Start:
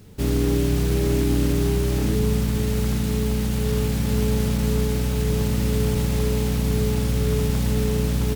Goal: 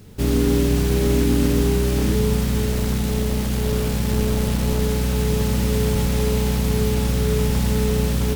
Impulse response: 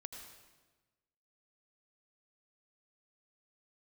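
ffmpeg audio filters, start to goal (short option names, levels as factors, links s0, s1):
-filter_complex "[0:a]asettb=1/sr,asplit=3[s0][s1][s2];[s0]atrim=end=2.664[s3];[s1]atrim=start=2.66:end=4.82,asetpts=PTS-STARTPTS,afade=t=in:d=0.004:c=qsin,afade=t=out:st=2.156:d=0.004:c=qsin,aeval=exprs='clip(val(0),-1,0.0841)':c=same[s4];[s2]atrim=start=4.816[s5];[s3][s4]acrossfade=d=0.004:c1=hsin:c2=qsin[s6];[s6][s5]acrossfade=d=0.004:c1=qsin:c2=hsin[s7];[1:a]atrim=start_sample=2205,atrim=end_sample=6174[s8];[s7][s8]afir=irnorm=-1:irlink=0,volume=2.51"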